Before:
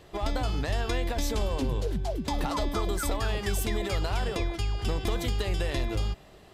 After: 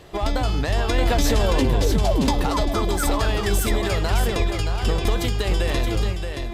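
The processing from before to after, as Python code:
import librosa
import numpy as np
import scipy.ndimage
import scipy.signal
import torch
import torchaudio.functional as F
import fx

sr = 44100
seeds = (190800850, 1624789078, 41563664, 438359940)

p1 = fx.clip_asym(x, sr, top_db=-25.5, bottom_db=-22.0)
p2 = x + (p1 * librosa.db_to_amplitude(-8.0))
p3 = p2 + 10.0 ** (-6.5 / 20.0) * np.pad(p2, (int(624 * sr / 1000.0), 0))[:len(p2)]
p4 = fx.env_flatten(p3, sr, amount_pct=70, at=(0.98, 2.31))
y = p4 * librosa.db_to_amplitude(4.0)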